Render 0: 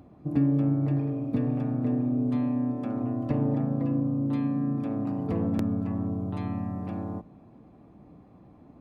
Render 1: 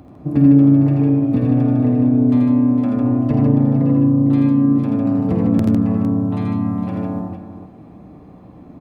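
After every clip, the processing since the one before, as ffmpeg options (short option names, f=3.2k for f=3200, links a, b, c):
-filter_complex "[0:a]acrossover=split=470[a][b];[b]acompressor=threshold=-41dB:ratio=3[c];[a][c]amix=inputs=2:normalize=0,asplit=2[d][e];[e]aecho=0:1:50|82|93|108|153|456:0.316|0.596|0.316|0.106|0.596|0.299[f];[d][f]amix=inputs=2:normalize=0,volume=8.5dB"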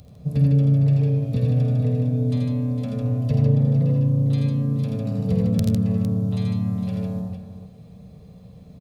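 -af "firequalizer=gain_entry='entry(180,0);entry(320,-26);entry(450,-2);entry(850,-16);entry(3800,7)':delay=0.05:min_phase=1"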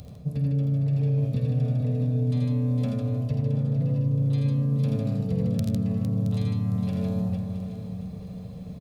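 -af "areverse,acompressor=threshold=-27dB:ratio=6,areverse,aecho=1:1:670|1340|2010|2680:0.266|0.112|0.0469|0.0197,volume=4dB"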